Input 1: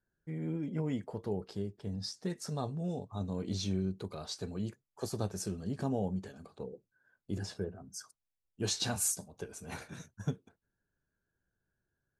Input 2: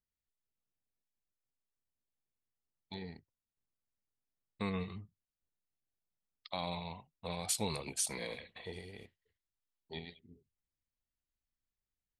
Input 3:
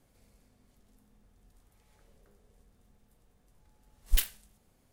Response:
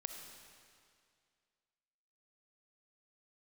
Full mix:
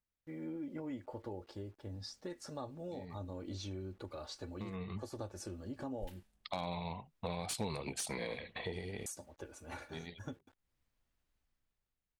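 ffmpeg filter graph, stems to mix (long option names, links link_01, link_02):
-filter_complex "[0:a]equalizer=frequency=200:width_type=o:width=0.51:gain=-13,aecho=1:1:3.5:0.64,acrusher=bits=10:mix=0:aa=0.000001,volume=-1.5dB,asplit=3[link_01][link_02][link_03];[link_01]atrim=end=6.23,asetpts=PTS-STARTPTS,afade=type=out:start_time=6.226:duration=0.004:curve=hsin[link_04];[link_02]atrim=start=6.23:end=9.06,asetpts=PTS-STARTPTS,volume=0[link_05];[link_03]atrim=start=9.06,asetpts=PTS-STARTPTS,afade=type=in:duration=0.004:curve=hsin[link_06];[link_04][link_05][link_06]concat=n=3:v=0:a=1,asplit=2[link_07][link_08];[1:a]dynaudnorm=framelen=240:gausssize=7:maxgain=11dB,aeval=exprs='0.178*(abs(mod(val(0)/0.178+3,4)-2)-1)':channel_layout=same,volume=1.5dB[link_09];[2:a]alimiter=limit=-6dB:level=0:latency=1:release=76,adelay=1900,volume=-13.5dB[link_10];[link_08]apad=whole_len=537855[link_11];[link_09][link_11]sidechaincompress=threshold=-58dB:ratio=10:attack=8.6:release=275[link_12];[link_07][link_12][link_10]amix=inputs=3:normalize=0,highshelf=frequency=4100:gain=-11,acompressor=threshold=-40dB:ratio=3"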